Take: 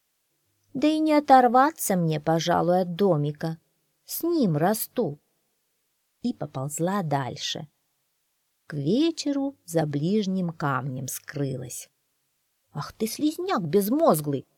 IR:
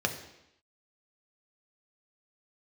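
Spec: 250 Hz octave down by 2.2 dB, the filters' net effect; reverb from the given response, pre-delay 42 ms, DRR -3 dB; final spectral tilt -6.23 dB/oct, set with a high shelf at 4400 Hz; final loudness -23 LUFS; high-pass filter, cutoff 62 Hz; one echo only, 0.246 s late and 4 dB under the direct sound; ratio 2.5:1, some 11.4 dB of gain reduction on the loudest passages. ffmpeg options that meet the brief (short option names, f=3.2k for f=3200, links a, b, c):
-filter_complex "[0:a]highpass=62,equalizer=f=250:t=o:g=-3,highshelf=f=4.4k:g=-6.5,acompressor=threshold=-28dB:ratio=2.5,aecho=1:1:246:0.631,asplit=2[a][b];[1:a]atrim=start_sample=2205,adelay=42[c];[b][c]afir=irnorm=-1:irlink=0,volume=-5.5dB[d];[a][d]amix=inputs=2:normalize=0,volume=2dB"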